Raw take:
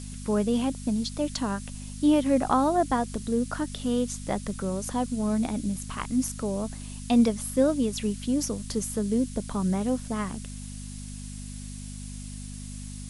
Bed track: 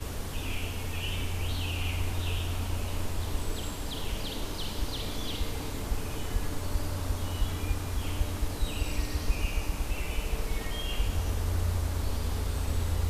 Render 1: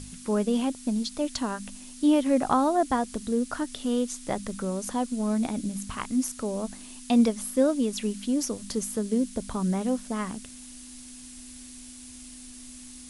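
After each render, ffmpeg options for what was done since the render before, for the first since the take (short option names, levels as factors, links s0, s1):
-af "bandreject=f=50:t=h:w=4,bandreject=f=100:t=h:w=4,bandreject=f=150:t=h:w=4,bandreject=f=200:t=h:w=4"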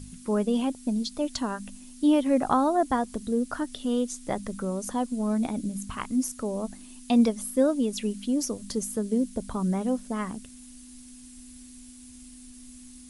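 -af "afftdn=nr=7:nf=-45"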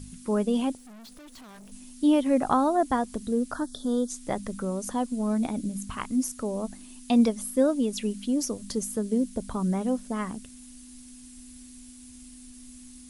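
-filter_complex "[0:a]asettb=1/sr,asplit=3[s0][s1][s2];[s0]atrim=end=0.774[s3];[s1]atrim=start=0.77:end=1.72,asetpts=PTS-STARTPTS,afade=t=in:d=0.004:c=qsin,afade=t=out:st=0.946:d=0.004:c=qsin,aeval=exprs='(tanh(200*val(0)+0.35)-tanh(0.35))/200':c=same[s4];[s2]atrim=start=1.716[s5];[s3][s4]acrossfade=d=0.004:c1=hsin:c2=qsin[s6];[s6][s5]acrossfade=d=0.004:c1=qsin:c2=hsin,asplit=3[s7][s8][s9];[s7]afade=t=out:st=3.53:d=0.02[s10];[s8]asuperstop=centerf=2400:order=12:qfactor=1.5,afade=t=in:st=3.53:d=0.02,afade=t=out:st=4.09:d=0.02[s11];[s9]afade=t=in:st=4.09:d=0.02[s12];[s10][s11][s12]amix=inputs=3:normalize=0"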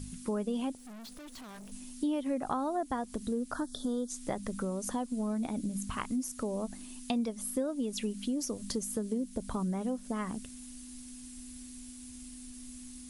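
-af "acompressor=threshold=0.0282:ratio=4"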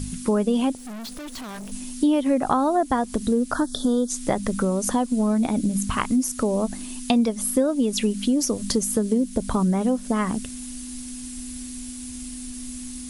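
-af "volume=3.98"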